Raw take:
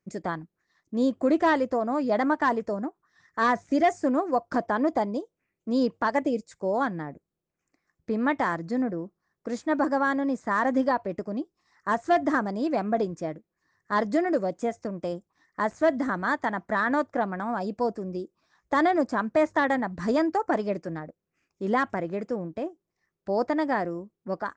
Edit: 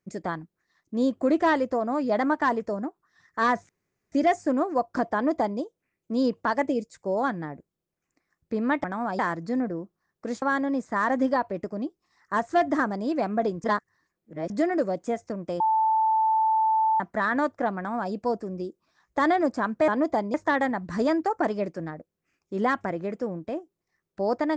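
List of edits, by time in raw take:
3.69 s: insert room tone 0.43 s
4.71–5.17 s: copy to 19.43 s
9.64–9.97 s: delete
13.19–14.05 s: reverse
15.15–16.55 s: bleep 881 Hz -19 dBFS
17.32–17.67 s: copy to 8.41 s

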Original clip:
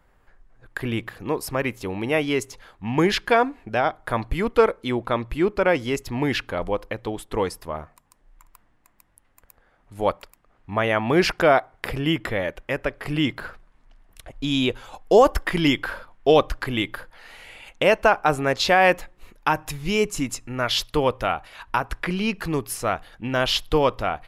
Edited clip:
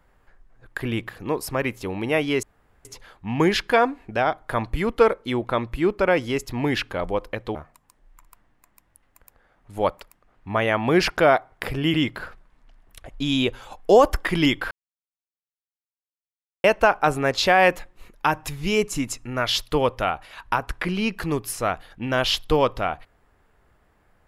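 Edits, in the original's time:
2.43 s: insert room tone 0.42 s
7.13–7.77 s: delete
12.16–13.16 s: delete
15.93–17.86 s: mute

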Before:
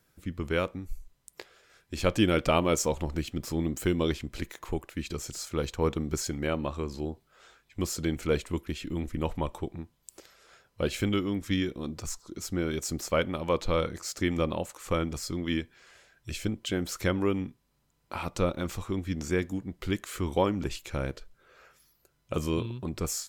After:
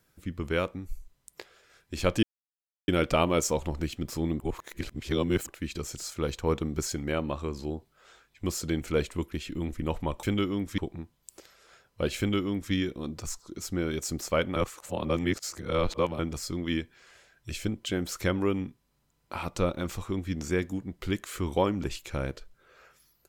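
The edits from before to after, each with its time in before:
2.23 s: insert silence 0.65 s
3.75–4.83 s: reverse
10.98–11.53 s: copy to 9.58 s
13.36–14.99 s: reverse

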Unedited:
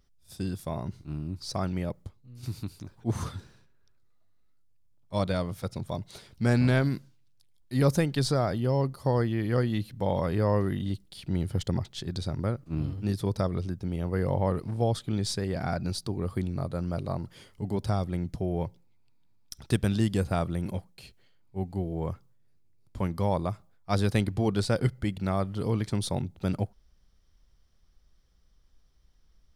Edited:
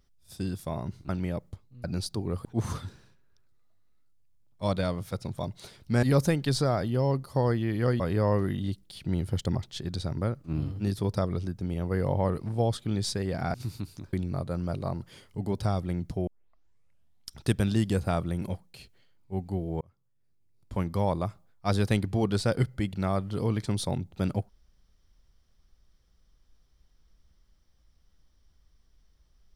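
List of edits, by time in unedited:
1.09–1.62 s: delete
2.37–2.96 s: swap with 15.76–16.37 s
6.54–7.73 s: delete
9.70–10.22 s: delete
18.51 s: tape start 1.08 s
22.05–23.01 s: fade in

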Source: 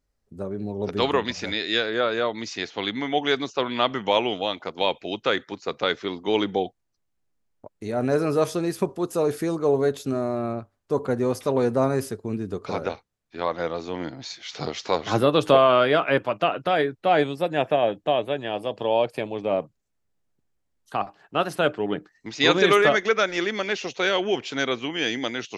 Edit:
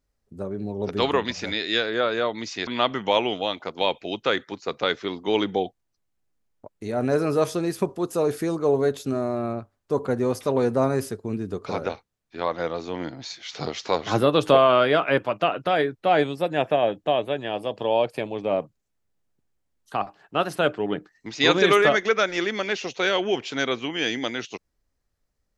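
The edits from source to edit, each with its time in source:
2.67–3.67 s: delete

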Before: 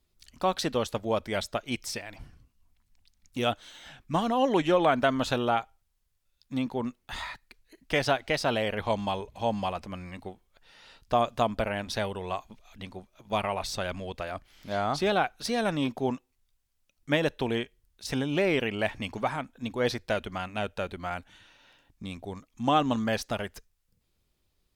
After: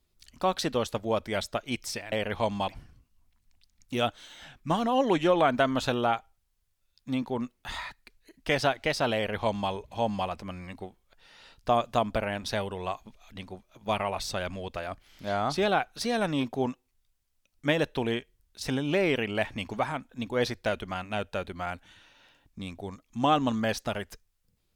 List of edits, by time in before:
8.59–9.15 s: copy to 2.12 s

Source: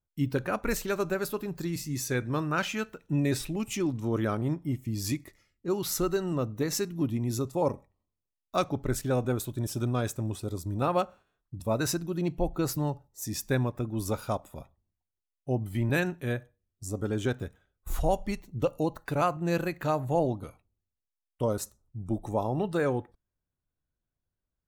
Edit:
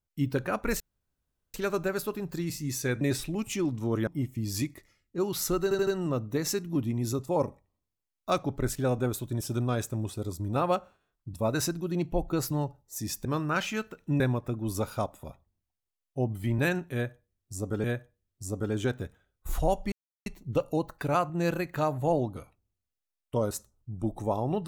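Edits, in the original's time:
0.80 s: insert room tone 0.74 s
2.27–3.22 s: move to 13.51 s
4.28–4.57 s: delete
6.13 s: stutter 0.08 s, 4 plays
16.25–17.15 s: loop, 2 plays
18.33 s: insert silence 0.34 s

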